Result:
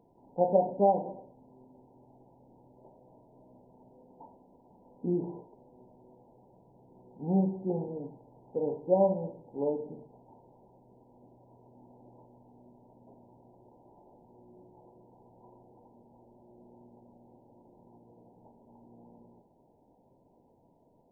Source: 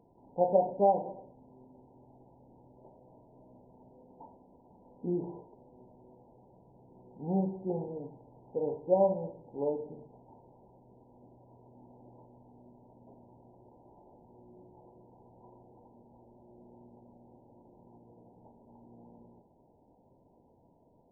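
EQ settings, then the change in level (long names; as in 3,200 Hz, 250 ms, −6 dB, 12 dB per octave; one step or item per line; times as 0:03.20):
dynamic equaliser 220 Hz, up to +5 dB, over −49 dBFS, Q 1.1
parametric band 64 Hz −5 dB 1.3 octaves
0.0 dB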